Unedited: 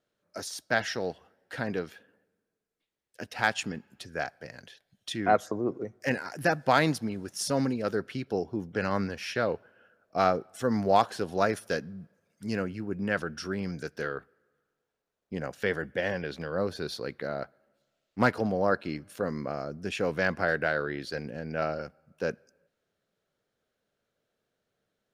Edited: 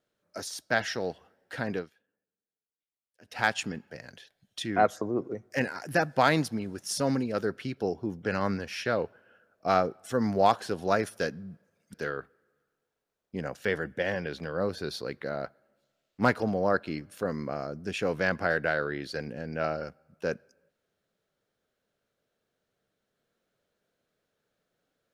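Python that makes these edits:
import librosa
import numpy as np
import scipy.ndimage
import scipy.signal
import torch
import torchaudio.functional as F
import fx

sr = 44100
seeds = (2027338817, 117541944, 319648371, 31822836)

y = fx.edit(x, sr, fx.fade_down_up(start_s=1.76, length_s=1.61, db=-18.0, fade_s=0.14),
    fx.cut(start_s=3.9, length_s=0.5),
    fx.cut(start_s=12.44, length_s=1.48), tone=tone)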